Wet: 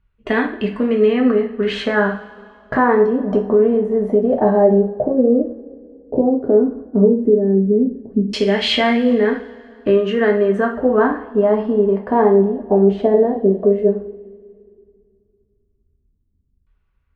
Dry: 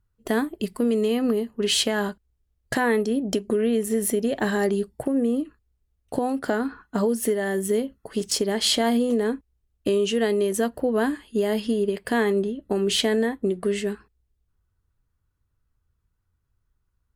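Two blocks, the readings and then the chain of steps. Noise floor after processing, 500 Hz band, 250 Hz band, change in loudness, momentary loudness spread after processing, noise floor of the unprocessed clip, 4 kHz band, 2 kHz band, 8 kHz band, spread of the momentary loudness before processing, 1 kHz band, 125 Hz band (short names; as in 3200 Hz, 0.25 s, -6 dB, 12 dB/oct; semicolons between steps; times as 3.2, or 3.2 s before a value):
-65 dBFS, +9.5 dB, +7.5 dB, +8.0 dB, 7 LU, -74 dBFS, +0.5 dB, +6.0 dB, under -15 dB, 7 LU, +9.0 dB, n/a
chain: two-slope reverb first 0.42 s, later 2.6 s, from -21 dB, DRR -0.5 dB; LFO low-pass saw down 0.12 Hz 250–2700 Hz; gain +3 dB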